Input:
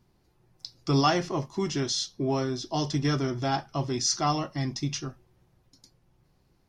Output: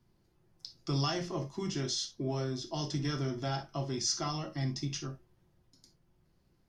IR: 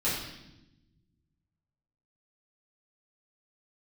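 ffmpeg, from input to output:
-filter_complex "[0:a]acrossover=split=140|3000[a][b][c];[b]acompressor=threshold=-29dB:ratio=2.5[d];[a][d][c]amix=inputs=3:normalize=0,asplit=2[e][f];[1:a]atrim=start_sample=2205,atrim=end_sample=3969,asetrate=52920,aresample=44100[g];[f][g]afir=irnorm=-1:irlink=0,volume=-10.5dB[h];[e][h]amix=inputs=2:normalize=0,volume=-7.5dB"

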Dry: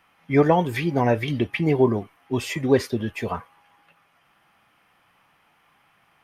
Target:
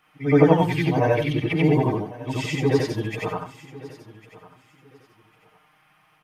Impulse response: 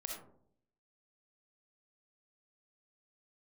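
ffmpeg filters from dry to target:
-filter_complex "[0:a]afftfilt=real='re':imag='-im':win_size=8192:overlap=0.75,aecho=1:1:6.5:0.97,asplit=2[a][b];[b]aecho=0:1:1101|2202:0.112|0.0247[c];[a][c]amix=inputs=2:normalize=0,acrossover=split=7400[d][e];[e]acompressor=threshold=-55dB:ratio=4:attack=1:release=60[f];[d][f]amix=inputs=2:normalize=0,volume=2.5dB"

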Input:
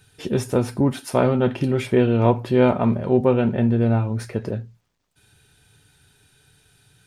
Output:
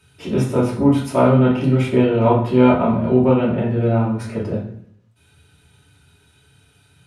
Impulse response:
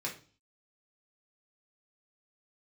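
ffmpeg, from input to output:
-filter_complex "[1:a]atrim=start_sample=2205,asetrate=24696,aresample=44100[a];[0:a][a]afir=irnorm=-1:irlink=0,volume=-3.5dB"

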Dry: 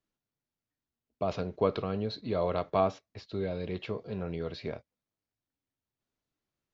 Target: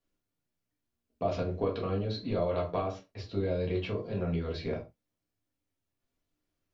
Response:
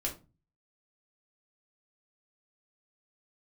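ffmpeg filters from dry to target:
-filter_complex "[0:a]acompressor=threshold=-30dB:ratio=6[a];[1:a]atrim=start_sample=2205,atrim=end_sample=6174[b];[a][b]afir=irnorm=-1:irlink=0"

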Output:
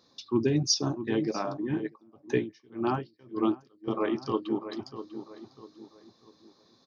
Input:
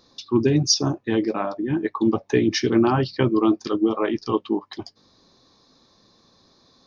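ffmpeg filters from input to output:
-filter_complex "[0:a]highpass=93,asplit=2[a][b];[b]adelay=646,lowpass=f=2.1k:p=1,volume=-11dB,asplit=2[c][d];[d]adelay=646,lowpass=f=2.1k:p=1,volume=0.38,asplit=2[e][f];[f]adelay=646,lowpass=f=2.1k:p=1,volume=0.38,asplit=2[g][h];[h]adelay=646,lowpass=f=2.1k:p=1,volume=0.38[i];[a][c][e][g][i]amix=inputs=5:normalize=0,asettb=1/sr,asplit=3[j][k][l];[j]atrim=end=1.794[m];[k]atrim=start=1.79:end=3.88,asetpts=PTS-STARTPTS,afade=t=in:d=0.004:c=qsin,afade=t=out:st=2.086:d=0.004:c=qsin,aeval=exprs='val(0)*pow(10,-33*(0.5-0.5*cos(2*PI*1.8*n/s))/20)':c=same[n];[l]atrim=start=3.876[o];[m][n]acrossfade=d=0.004:c1=hsin:c2=qsin[p];[p][o]acrossfade=d=0.004:c1=qsin:c2=hsin,volume=-6.5dB"

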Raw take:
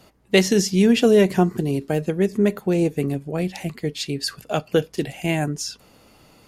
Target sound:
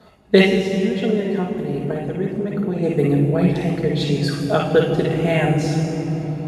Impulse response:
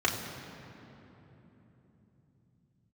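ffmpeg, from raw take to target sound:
-filter_complex "[0:a]asplit=3[a][b][c];[a]afade=t=out:st=0.41:d=0.02[d];[b]acompressor=threshold=-27dB:ratio=6,afade=t=in:st=0.41:d=0.02,afade=t=out:st=2.82:d=0.02[e];[c]afade=t=in:st=2.82:d=0.02[f];[d][e][f]amix=inputs=3:normalize=0[g];[1:a]atrim=start_sample=2205,asetrate=25137,aresample=44100[h];[g][h]afir=irnorm=-1:irlink=0,volume=-9.5dB"

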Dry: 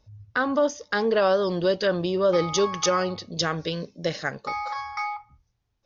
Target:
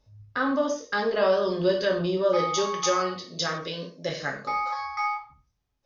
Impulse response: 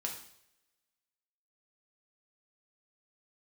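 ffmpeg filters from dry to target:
-filter_complex "[0:a]asettb=1/sr,asplit=3[a][b][c];[a]atrim=end=2.174[d];[b]atrim=start=2.17:end=4.09,asetpts=PTS-STARTPTS,afade=t=in:d=0.004:c=qsin,afade=t=out:st=1.916:d=0.004:c=qsin,highpass=f=220:p=1[e];[c]atrim=start=4.086[f];[d][e]acrossfade=d=0.004:c1=hsin:c2=qsin[g];[g][f]acrossfade=d=0.004:c1=qsin:c2=hsin[h];[1:a]atrim=start_sample=2205,afade=t=out:st=0.27:d=0.01,atrim=end_sample=12348,asetrate=57330,aresample=44100[i];[h][i]afir=irnorm=-1:irlink=0"

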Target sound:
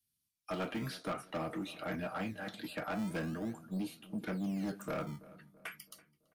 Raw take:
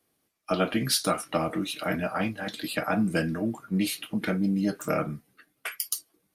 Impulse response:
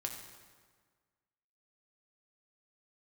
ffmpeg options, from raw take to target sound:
-filter_complex "[0:a]acrossover=split=190|2700[a][b][c];[a]acrusher=samples=23:mix=1:aa=0.000001:lfo=1:lforange=36.8:lforate=0.43[d];[b]agate=range=-33dB:threshold=-58dB:ratio=3:detection=peak[e];[c]acompressor=threshold=-44dB:ratio=10[f];[d][e][f]amix=inputs=3:normalize=0,asoftclip=type=tanh:threshold=-24dB,asettb=1/sr,asplit=3[g][h][i];[g]atrim=end=3.534[j];[h]atrim=start=3.53:end=4.27,asetpts=PTS-STARTPTS,afade=t=in:d=0.004:c=qsin,afade=t=out:st=0.736:d=0.004:c=qsin,equalizer=f=1.9k:w=1.1:g=-12.5[k];[i]atrim=start=4.266[l];[j][k]acrossfade=d=0.004:c1=hsin:c2=qsin[m];[m][l]acrossfade=d=0.004:c1=qsin:c2=hsin,asplit=2[n][o];[o]adelay=332,lowpass=f=1.4k:p=1,volume=-18dB,asplit=2[p][q];[q]adelay=332,lowpass=f=1.4k:p=1,volume=0.48,asplit=2[r][s];[s]adelay=332,lowpass=f=1.4k:p=1,volume=0.48,asplit=2[t][u];[u]adelay=332,lowpass=f=1.4k:p=1,volume=0.48[v];[p][r][t][v]amix=inputs=4:normalize=0[w];[n][w]amix=inputs=2:normalize=0,volume=-7.5dB"

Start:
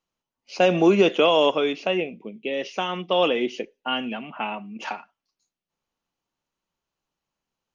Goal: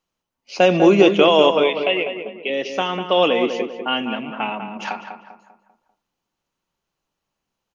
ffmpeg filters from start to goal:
-filter_complex "[0:a]asettb=1/sr,asplit=3[a][b][c];[a]atrim=end=1.634[d];[b]atrim=start=1.63:end=2.5,asetpts=PTS-STARTPTS,afade=t=in:d=0.004:c=qsin,afade=t=out:st=0.866:d=0.004:c=qsin,highpass=300,equalizer=f=300:t=q:w=4:g=-9,equalizer=f=1k:t=q:w=4:g=-8,equalizer=f=1.5k:t=q:w=4:g=-9,equalizer=f=2.1k:t=q:w=4:g=7,equalizer=f=3.1k:t=q:w=4:g=5,lowpass=f=3.9k:w=0.5412,lowpass=f=3.9k:w=1.3066[e];[c]atrim=start=2.496[f];[d][e]acrossfade=d=0.004:c1=hsin:c2=qsin[g];[g][f]acrossfade=d=0.004:c1=qsin:c2=hsin,asplit=2[h][i];[i]adelay=197,lowpass=f=1.9k:p=1,volume=-7dB,asplit=2[j][k];[k]adelay=197,lowpass=f=1.9k:p=1,volume=0.44,asplit=2[l][m];[m]adelay=197,lowpass=f=1.9k:p=1,volume=0.44,asplit=2[n][o];[o]adelay=197,lowpass=f=1.9k:p=1,volume=0.44,asplit=2[p][q];[q]adelay=197,lowpass=f=1.9k:p=1,volume=0.44[r];[h][j][l][n][p][r]amix=inputs=6:normalize=0,volume=4dB"

